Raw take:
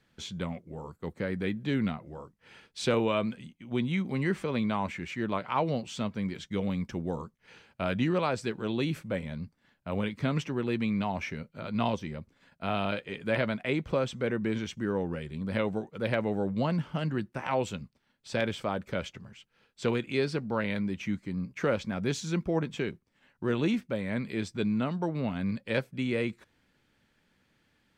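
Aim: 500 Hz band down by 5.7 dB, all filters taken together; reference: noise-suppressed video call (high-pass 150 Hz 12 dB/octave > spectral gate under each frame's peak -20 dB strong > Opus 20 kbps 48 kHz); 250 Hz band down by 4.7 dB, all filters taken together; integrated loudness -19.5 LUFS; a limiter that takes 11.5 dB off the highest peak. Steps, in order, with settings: peaking EQ 250 Hz -3.5 dB; peaking EQ 500 Hz -6 dB; peak limiter -27.5 dBFS; high-pass 150 Hz 12 dB/octave; spectral gate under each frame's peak -20 dB strong; trim +20.5 dB; Opus 20 kbps 48 kHz

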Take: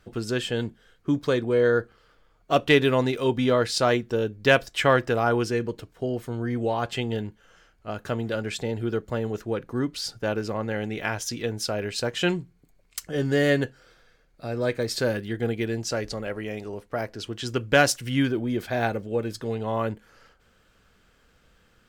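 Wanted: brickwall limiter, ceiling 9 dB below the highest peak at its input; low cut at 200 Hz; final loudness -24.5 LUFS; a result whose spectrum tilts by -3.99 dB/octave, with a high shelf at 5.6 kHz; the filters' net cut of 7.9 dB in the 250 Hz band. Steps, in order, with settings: high-pass 200 Hz; peaking EQ 250 Hz -8.5 dB; treble shelf 5.6 kHz -8 dB; trim +6 dB; peak limiter -7.5 dBFS

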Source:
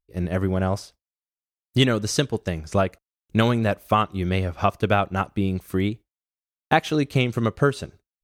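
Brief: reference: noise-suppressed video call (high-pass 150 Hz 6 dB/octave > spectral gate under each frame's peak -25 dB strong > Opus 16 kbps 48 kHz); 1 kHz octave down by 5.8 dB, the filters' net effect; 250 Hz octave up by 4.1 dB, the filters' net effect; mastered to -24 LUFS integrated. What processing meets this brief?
high-pass 150 Hz 6 dB/octave; peaking EQ 250 Hz +7.5 dB; peaking EQ 1 kHz -9 dB; spectral gate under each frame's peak -25 dB strong; trim -0.5 dB; Opus 16 kbps 48 kHz

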